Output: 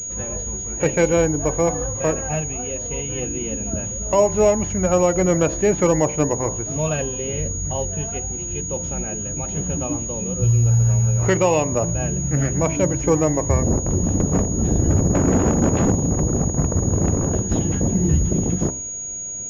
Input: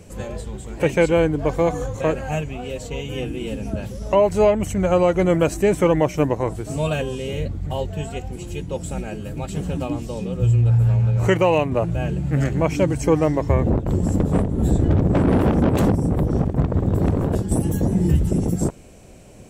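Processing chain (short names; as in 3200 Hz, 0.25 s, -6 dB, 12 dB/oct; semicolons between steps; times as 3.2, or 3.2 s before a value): de-hum 64.82 Hz, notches 17; pulse-width modulation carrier 6700 Hz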